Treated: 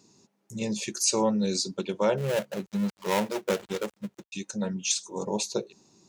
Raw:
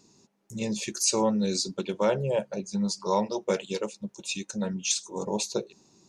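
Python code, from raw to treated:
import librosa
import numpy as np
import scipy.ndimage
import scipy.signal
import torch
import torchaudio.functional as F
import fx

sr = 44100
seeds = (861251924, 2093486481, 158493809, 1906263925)

y = fx.dead_time(x, sr, dead_ms=0.25, at=(2.17, 4.32), fade=0.02)
y = scipy.signal.sosfilt(scipy.signal.butter(2, 55.0, 'highpass', fs=sr, output='sos'), y)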